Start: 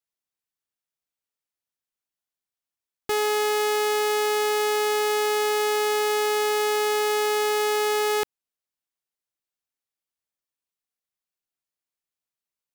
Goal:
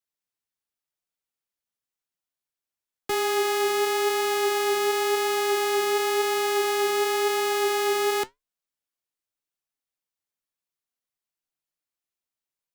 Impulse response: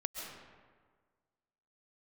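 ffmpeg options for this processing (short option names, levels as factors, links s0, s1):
-af "afreqshift=-17,flanger=delay=5.4:depth=5.3:regen=72:speed=0.94:shape=triangular,volume=1.5"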